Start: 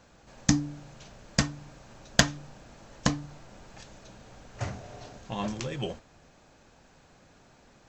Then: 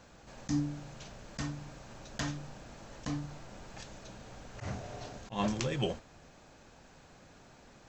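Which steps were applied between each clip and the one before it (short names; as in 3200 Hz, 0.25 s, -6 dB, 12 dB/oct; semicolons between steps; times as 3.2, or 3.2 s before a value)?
auto swell 0.113 s; gain +1 dB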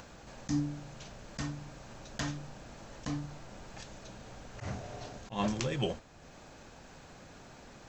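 upward compressor, threshold -45 dBFS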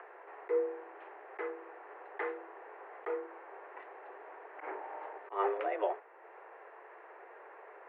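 mistuned SSB +190 Hz 210–2000 Hz; gain +2 dB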